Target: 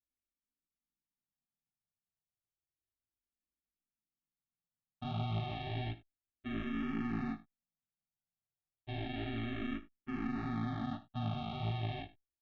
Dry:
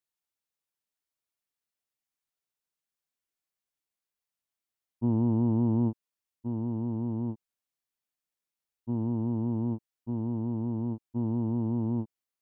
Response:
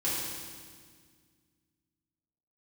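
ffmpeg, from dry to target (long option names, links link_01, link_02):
-filter_complex "[0:a]lowpass=1100,equalizer=frequency=160:width=0.46:gain=-7.5,alimiter=level_in=9dB:limit=-24dB:level=0:latency=1:release=13,volume=-9dB,aresample=8000,acrusher=samples=16:mix=1:aa=0.000001,aresample=44100,aeval=exprs='0.0282*(cos(1*acos(clip(val(0)/0.0282,-1,1)))-cos(1*PI/2))+0.00316*(cos(2*acos(clip(val(0)/0.0282,-1,1)))-cos(2*PI/2))':channel_layout=same,flanger=delay=17:depth=5.1:speed=1.7,aecho=1:1:54|78:0.133|0.133,asplit=2[link_01][link_02];[link_02]afreqshift=-0.32[link_03];[link_01][link_03]amix=inputs=2:normalize=1,volume=7dB"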